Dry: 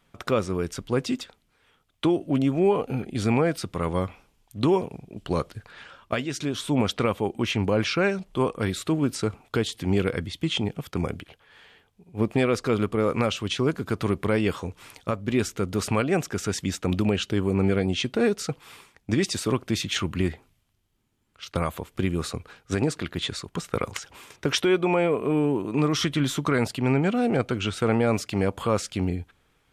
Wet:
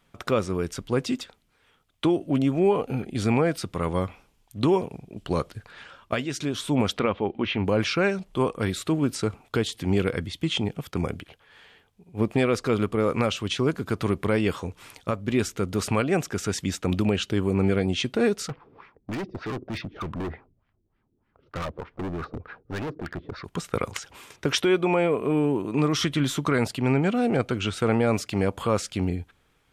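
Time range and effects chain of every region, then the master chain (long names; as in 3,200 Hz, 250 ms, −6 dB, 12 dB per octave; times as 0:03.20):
0:06.99–0:07.66: low-pass filter 3,700 Hz 24 dB per octave + parametric band 120 Hz −13 dB 0.2 octaves
0:18.48–0:23.45: high shelf with overshoot 6,700 Hz −8.5 dB, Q 3 + auto-filter low-pass sine 3.3 Hz 320–2,000 Hz + gain into a clipping stage and back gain 28.5 dB
whole clip: no processing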